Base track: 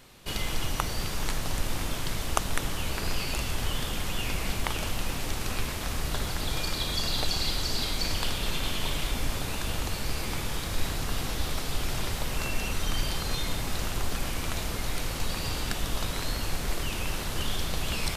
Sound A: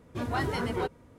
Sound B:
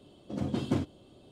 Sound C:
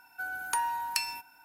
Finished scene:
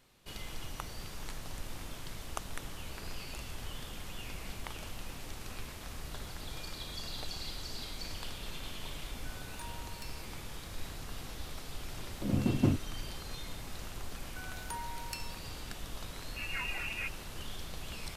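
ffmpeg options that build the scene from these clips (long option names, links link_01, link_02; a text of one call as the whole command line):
ffmpeg -i bed.wav -i cue0.wav -i cue1.wav -i cue2.wav -filter_complex "[3:a]asplit=2[link_01][link_02];[0:a]volume=-12.5dB[link_03];[link_01]aeval=exprs='(tanh(12.6*val(0)+0.6)-tanh(0.6))/12.6':channel_layout=same[link_04];[2:a]lowshelf=frequency=230:gain=10[link_05];[1:a]lowpass=frequency=2500:width_type=q:width=0.5098,lowpass=frequency=2500:width_type=q:width=0.6013,lowpass=frequency=2500:width_type=q:width=0.9,lowpass=frequency=2500:width_type=q:width=2.563,afreqshift=-2900[link_06];[link_04]atrim=end=1.44,asetpts=PTS-STARTPTS,volume=-16dB,afade=type=in:duration=0.004:curve=hsin,afade=type=out:start_time=1.436:duration=0.004:curve=hsin,adelay=399546S[link_07];[link_05]atrim=end=1.31,asetpts=PTS-STARTPTS,volume=-3.5dB,afade=type=in:duration=0.004:curve=hsin,afade=type=out:start_time=1.306:duration=0.004:curve=hsin,adelay=11920[link_08];[link_02]atrim=end=1.44,asetpts=PTS-STARTPTS,volume=-12dB,afade=type=in:duration=0.004:curve=hsin,afade=type=out:start_time=1.436:duration=0.004:curve=hsin,adelay=14170[link_09];[link_06]atrim=end=1.18,asetpts=PTS-STARTPTS,volume=-9dB,afade=type=in:duration=0.004:curve=hsin,afade=type=out:start_time=1.176:duration=0.004:curve=hsin,adelay=16210[link_10];[link_03][link_07][link_08][link_09][link_10]amix=inputs=5:normalize=0" out.wav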